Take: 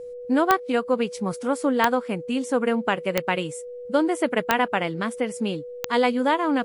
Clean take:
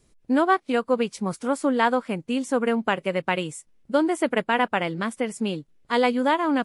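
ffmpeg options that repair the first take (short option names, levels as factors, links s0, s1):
-af "adeclick=t=4,bandreject=f=490:w=30"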